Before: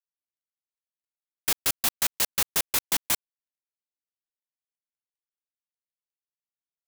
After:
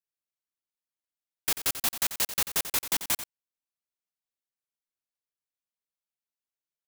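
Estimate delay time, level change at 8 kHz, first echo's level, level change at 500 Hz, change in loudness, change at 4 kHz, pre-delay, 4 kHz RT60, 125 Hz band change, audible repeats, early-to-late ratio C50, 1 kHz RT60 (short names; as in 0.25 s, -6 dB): 90 ms, -2.0 dB, -11.5 dB, -2.0 dB, -2.0 dB, -2.0 dB, none, none, -2.0 dB, 1, none, none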